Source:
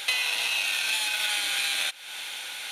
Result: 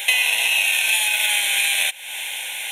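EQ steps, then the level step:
parametric band 360 Hz +10.5 dB 0.76 octaves
high-shelf EQ 2,300 Hz +9 dB
phaser with its sweep stopped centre 1,300 Hz, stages 6
+5.0 dB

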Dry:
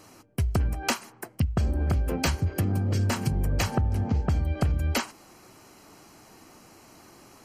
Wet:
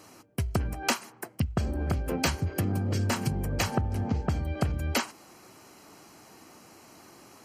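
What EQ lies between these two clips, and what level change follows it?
high-pass filter 110 Hz 6 dB per octave
0.0 dB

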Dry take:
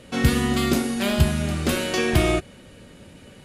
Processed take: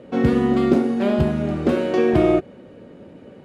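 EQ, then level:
resonant band-pass 400 Hz, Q 0.89
+7.5 dB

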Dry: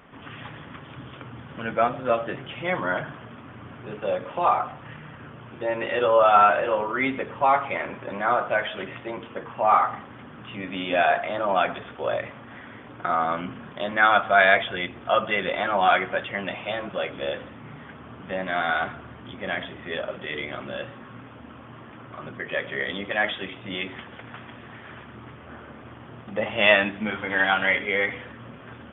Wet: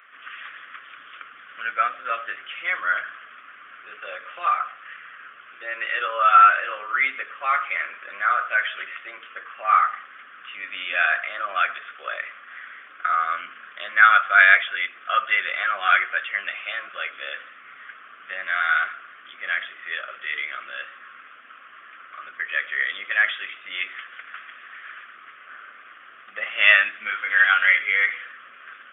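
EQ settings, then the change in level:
high-pass with resonance 1,200 Hz, resonance Q 2.7
phaser with its sweep stopped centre 2,200 Hz, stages 4
+2.5 dB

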